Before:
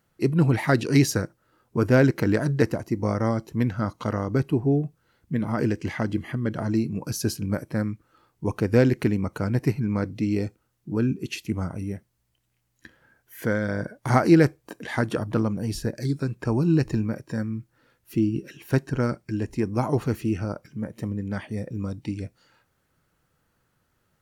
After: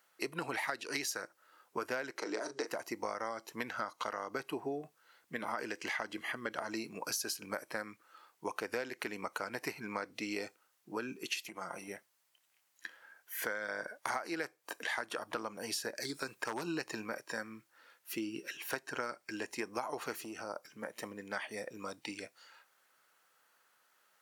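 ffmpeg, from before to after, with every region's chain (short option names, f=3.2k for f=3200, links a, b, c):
-filter_complex "[0:a]asettb=1/sr,asplit=3[a][b][c];[a]atrim=end=2.184[d];[b]atrim=start=2.18:end=2.67,asetpts=PTS-STARTPTS,afade=t=in:d=0.004:c=qsin,afade=t=out:st=0.486:d=0.004:c=qsin,acompressor=threshold=-28dB:ratio=1.5:attack=3.2:release=140:knee=1:detection=peak,highpass=f=210:w=0.5412,highpass=f=210:w=1.3066,equalizer=f=380:t=q:w=4:g=8,equalizer=f=1.7k:t=q:w=4:g=-9,equalizer=f=2.8k:t=q:w=4:g=-7,equalizer=f=5.7k:t=q:w=4:g=6,lowpass=f=8.8k:w=0.5412,lowpass=f=8.8k:w=1.3066,asplit=2[e][f];[f]adelay=37,volume=-9.5dB[g];[e][g]amix=inputs=2:normalize=0,atrim=end_sample=21609[h];[c]atrim=start=2.666[i];[d][h]acrossfade=d=0.004:c1=hsin:c2=qsin[j];[j][i]acrossfade=d=0.004:c1=qsin:c2=hsin,asettb=1/sr,asplit=3[k][l][m];[k]atrim=end=11.364[n];[l]atrim=start=11.36:end=11.88,asetpts=PTS-STARTPTS,afade=t=in:d=0.004:c=qsin,afade=t=out:st=0.516:d=0.004:c=qsin,aecho=1:1:5.7:0.52,atrim=end_sample=22932,acompressor=threshold=-29dB:ratio=12:attack=3.2:release=140:knee=1:detection=peak[o];[m]atrim=start=11.876[p];[n][o]acrossfade=d=0.004:c1=hsin:c2=qsin[q];[q][p]acrossfade=d=0.004:c1=qsin:c2=hsin,asettb=1/sr,asplit=3[r][s][t];[r]atrim=end=16.144[u];[s]atrim=start=16.14:end=16.63,asetpts=PTS-STARTPTS,afade=t=in:d=0.004:c=qsin,afade=t=out:st=0.486:d=0.004:c=qsin,highshelf=f=7k:g=6.5,aeval=exprs='0.141*(abs(mod(val(0)/0.141+3,4)-2)-1)':c=same[v];[t]atrim=start=16.626[w];[u][v]acrossfade=d=0.004:c1=hsin:c2=qsin[x];[x][w]acrossfade=d=0.004:c1=qsin:c2=hsin,asettb=1/sr,asplit=3[y][z][aa];[y]atrim=end=20.164[ab];[z]atrim=start=20.16:end=20.7,asetpts=PTS-STARTPTS,afade=t=in:d=0.004:c=qsin,afade=t=out:st=0.536:d=0.004:c=qsin,acompressor=threshold=-27dB:ratio=4:attack=3.2:release=140:knee=1:detection=peak,equalizer=f=2.2k:w=0.97:g=-8[ac];[aa]atrim=start=20.696[ad];[ab][ac]acrossfade=d=0.004:c1=hsin:c2=qsin[ae];[ae][ad]acrossfade=d=0.004:c1=qsin:c2=hsin,highpass=780,acompressor=threshold=-37dB:ratio=12,volume=3.5dB"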